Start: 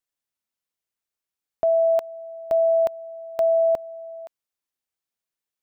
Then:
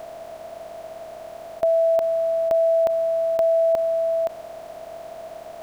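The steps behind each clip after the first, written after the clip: spectral levelling over time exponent 0.2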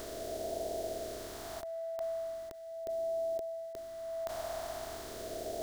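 fifteen-band graphic EQ 160 Hz -11 dB, 400 Hz +10 dB, 2.5 kHz -9 dB; compressor with a negative ratio -26 dBFS, ratio -1; phase shifter stages 2, 0.39 Hz, lowest notch 420–1100 Hz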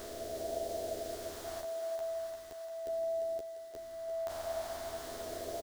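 doubling 12 ms -3.5 dB; thinning echo 347 ms, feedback 72%, high-pass 440 Hz, level -6.5 dB; trim -3 dB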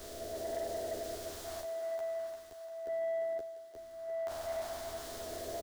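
waveshaping leveller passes 2; three bands expanded up and down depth 70%; trim -6 dB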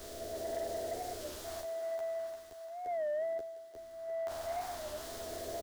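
warped record 33 1/3 rpm, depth 160 cents

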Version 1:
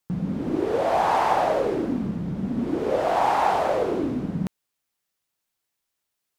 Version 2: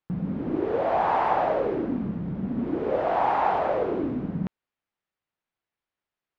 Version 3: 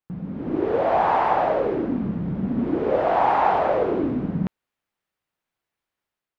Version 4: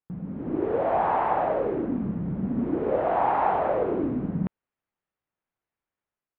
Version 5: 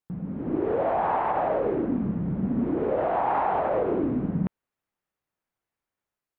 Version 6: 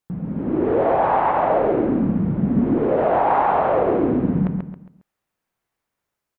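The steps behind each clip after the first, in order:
low-pass 2.5 kHz 12 dB/octave; trim -2 dB
level rider gain up to 8 dB; trim -3.5 dB
distance through air 400 m; trim -2.5 dB
peak limiter -18 dBFS, peak gain reduction 7 dB; trim +1.5 dB
feedback delay 136 ms, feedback 34%, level -4.5 dB; trim +5.5 dB

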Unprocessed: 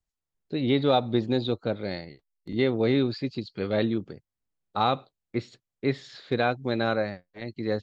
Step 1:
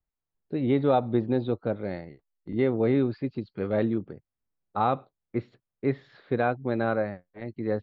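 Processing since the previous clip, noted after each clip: low-pass 1.7 kHz 12 dB/octave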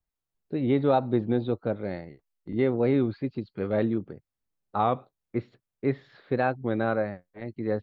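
warped record 33 1/3 rpm, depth 100 cents

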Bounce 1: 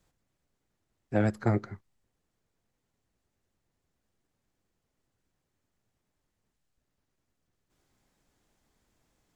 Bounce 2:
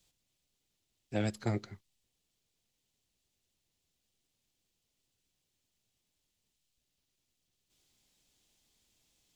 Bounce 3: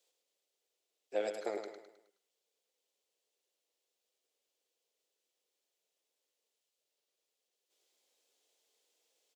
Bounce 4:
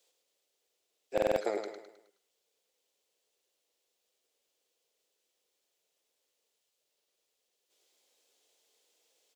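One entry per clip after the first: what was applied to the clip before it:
resonant high shelf 2.2 kHz +11 dB, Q 1.5; trim -6.5 dB
ladder high-pass 420 Hz, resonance 60%; on a send: feedback delay 105 ms, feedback 44%, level -7 dB; on the sum: trim +5.5 dB
buffer glitch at 1.13 s, samples 2048, times 4; trim +5 dB

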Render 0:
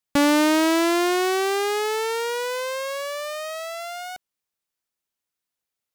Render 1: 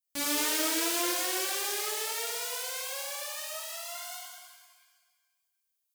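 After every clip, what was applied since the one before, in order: pre-emphasis filter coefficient 0.9; pitch-shifted reverb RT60 1.5 s, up +7 st, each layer -8 dB, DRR -7 dB; trim -6 dB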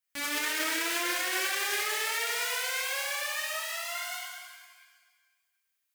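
peaking EQ 1.9 kHz +12 dB 1.4 oct; peak limiter -19.5 dBFS, peak gain reduction 9.5 dB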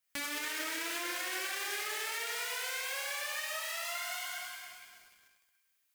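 compression 5:1, threshold -39 dBFS, peak gain reduction 11 dB; bit-crushed delay 298 ms, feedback 55%, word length 9-bit, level -11.5 dB; trim +3.5 dB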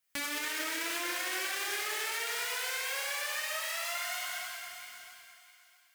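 thinning echo 659 ms, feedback 23%, high-pass 540 Hz, level -11.5 dB; trim +2 dB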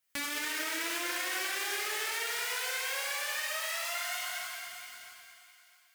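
reverberation, pre-delay 3 ms, DRR 8.5 dB

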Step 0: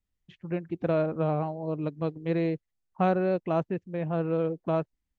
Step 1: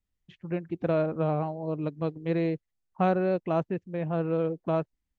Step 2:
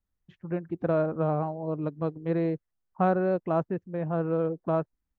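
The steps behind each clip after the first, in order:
no audible change
resonant high shelf 1.9 kHz -6.5 dB, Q 1.5

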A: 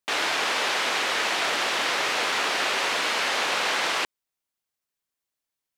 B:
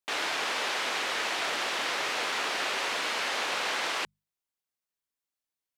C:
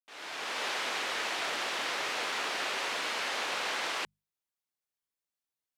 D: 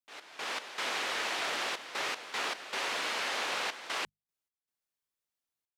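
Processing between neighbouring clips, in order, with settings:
hum notches 50/100/150/200 Hz; trim -5.5 dB
fade-in on the opening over 0.66 s; trim -3 dB
trance gate "x.x.xxxxx." 77 bpm -12 dB

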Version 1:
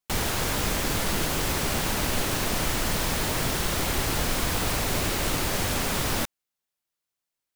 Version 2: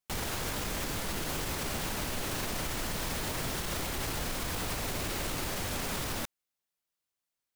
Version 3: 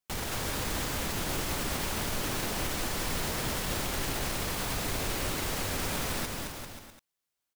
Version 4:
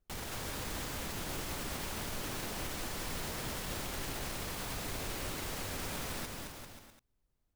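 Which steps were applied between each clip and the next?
peak limiter -22.5 dBFS, peak gain reduction 9.5 dB; trim -2.5 dB
bouncing-ball echo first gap 220 ms, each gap 0.8×, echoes 5
added noise brown -71 dBFS; trim -7 dB

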